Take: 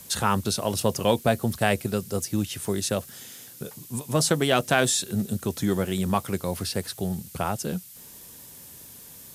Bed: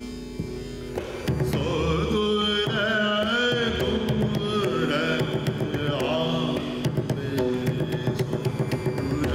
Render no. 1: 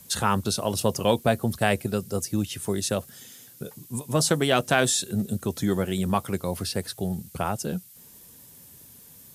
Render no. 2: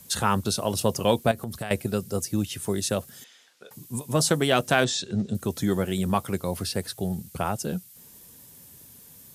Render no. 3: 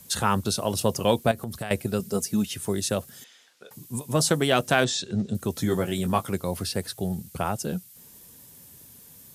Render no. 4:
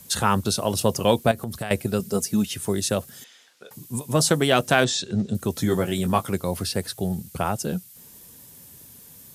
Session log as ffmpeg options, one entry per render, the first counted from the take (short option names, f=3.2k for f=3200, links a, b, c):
-af "afftdn=nr=6:nf=-46"
-filter_complex "[0:a]asettb=1/sr,asplit=3[a][b][c];[a]atrim=end=1.314[d];[b]atrim=start=1.31:end=1.71,asetpts=PTS-STARTPTS,afade=t=in:d=0.004:c=qsin,afade=t=out:st=0.396:d=0.004:c=qsin,acompressor=threshold=-28dB:ratio=10:attack=3.2:release=140:knee=1:detection=peak[e];[c]atrim=start=1.706[f];[d][e]acrossfade=d=0.004:c1=hsin:c2=qsin[g];[g][f]acrossfade=d=0.004:c1=qsin:c2=hsin,asettb=1/sr,asplit=3[h][i][j];[h]atrim=end=3.244[k];[i]atrim=start=3.24:end=3.71,asetpts=PTS-STARTPTS,afade=t=in:d=0.004:c=qsin,afade=t=out:st=0.466:d=0.004:c=qsin,highpass=740,lowpass=4k[l];[j]atrim=start=3.706[m];[k][l]acrossfade=d=0.004:c1=hsin:c2=qsin[n];[n][m]acrossfade=d=0.004:c1=qsin:c2=hsin,asettb=1/sr,asplit=3[o][p][q];[o]atrim=end=4.844[r];[p]atrim=start=4.84:end=5.35,asetpts=PTS-STARTPTS,afade=t=in:d=0.004:c=qsin,afade=t=out:st=0.506:d=0.004:c=qsin,lowpass=f=6.2k:w=0.5412,lowpass=f=6.2k:w=1.3066[s];[q]atrim=start=5.346[t];[r][s]acrossfade=d=0.004:c1=hsin:c2=qsin[u];[u][t]acrossfade=d=0.004:c1=qsin:c2=hsin"
-filter_complex "[0:a]asettb=1/sr,asplit=3[a][b][c];[a]atrim=end=1.994[d];[b]atrim=start=1.99:end=2.54,asetpts=PTS-STARTPTS,afade=t=in:d=0.004:c=qsin,afade=t=out:st=0.546:d=0.004:c=qsin,aecho=1:1:4.7:0.65,atrim=end_sample=24255[e];[c]atrim=start=2.536[f];[d][e]acrossfade=d=0.004:c1=hsin:c2=qsin[g];[g][f]acrossfade=d=0.004:c1=qsin:c2=hsin,asettb=1/sr,asplit=3[h][i][j];[h]atrim=end=5.544[k];[i]atrim=start=5.54:end=6.3,asetpts=PTS-STARTPTS,afade=t=in:d=0.004:c=qsin,afade=t=out:st=0.756:d=0.004:c=qsin,asplit=2[l][m];[m]adelay=18,volume=-6.5dB[n];[l][n]amix=inputs=2:normalize=0,atrim=end_sample=33516[o];[j]atrim=start=6.296[p];[k][o]acrossfade=d=0.004:c1=hsin:c2=qsin[q];[q][p]acrossfade=d=0.004:c1=qsin:c2=hsin"
-af "volume=2.5dB"